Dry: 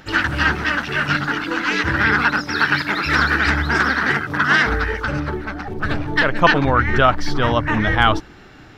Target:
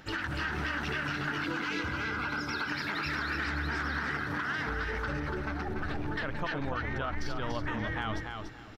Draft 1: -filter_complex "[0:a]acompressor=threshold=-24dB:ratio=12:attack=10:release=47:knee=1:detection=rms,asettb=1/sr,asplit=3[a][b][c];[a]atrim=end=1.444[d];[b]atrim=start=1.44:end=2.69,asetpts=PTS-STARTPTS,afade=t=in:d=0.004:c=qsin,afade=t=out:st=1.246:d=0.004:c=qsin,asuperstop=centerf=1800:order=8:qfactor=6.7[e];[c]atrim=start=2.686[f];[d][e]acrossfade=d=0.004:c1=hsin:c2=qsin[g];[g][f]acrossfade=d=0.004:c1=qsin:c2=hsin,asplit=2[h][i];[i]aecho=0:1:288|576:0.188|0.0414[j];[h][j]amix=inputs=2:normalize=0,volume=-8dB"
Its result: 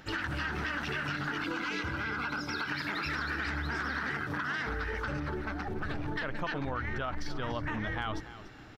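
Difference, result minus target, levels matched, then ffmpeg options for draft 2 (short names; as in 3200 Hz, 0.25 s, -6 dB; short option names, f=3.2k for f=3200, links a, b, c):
echo-to-direct -9 dB
-filter_complex "[0:a]acompressor=threshold=-24dB:ratio=12:attack=10:release=47:knee=1:detection=rms,asettb=1/sr,asplit=3[a][b][c];[a]atrim=end=1.444[d];[b]atrim=start=1.44:end=2.69,asetpts=PTS-STARTPTS,afade=t=in:d=0.004:c=qsin,afade=t=out:st=1.246:d=0.004:c=qsin,asuperstop=centerf=1800:order=8:qfactor=6.7[e];[c]atrim=start=2.686[f];[d][e]acrossfade=d=0.004:c1=hsin:c2=qsin[g];[g][f]acrossfade=d=0.004:c1=qsin:c2=hsin,asplit=2[h][i];[i]aecho=0:1:288|576|864:0.531|0.117|0.0257[j];[h][j]amix=inputs=2:normalize=0,volume=-8dB"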